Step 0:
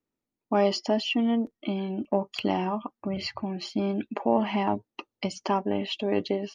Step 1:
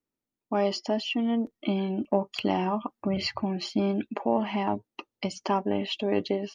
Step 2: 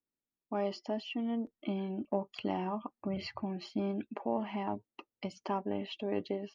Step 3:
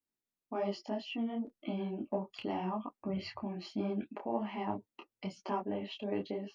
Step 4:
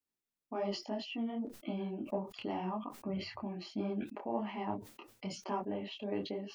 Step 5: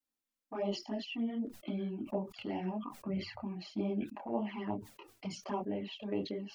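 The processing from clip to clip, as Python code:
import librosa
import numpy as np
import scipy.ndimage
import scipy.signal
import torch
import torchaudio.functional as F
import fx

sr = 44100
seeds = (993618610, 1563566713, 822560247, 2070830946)

y1 = fx.rider(x, sr, range_db=3, speed_s=0.5)
y2 = fx.high_shelf(y1, sr, hz=4700.0, db=-11.5)
y2 = y2 * librosa.db_to_amplitude(-8.0)
y3 = fx.detune_double(y2, sr, cents=37)
y3 = y3 * librosa.db_to_amplitude(2.5)
y4 = fx.sustainer(y3, sr, db_per_s=120.0)
y4 = y4 * librosa.db_to_amplitude(-1.5)
y5 = fx.env_flanger(y4, sr, rest_ms=3.8, full_db=-32.0)
y5 = y5 * librosa.db_to_amplitude(2.5)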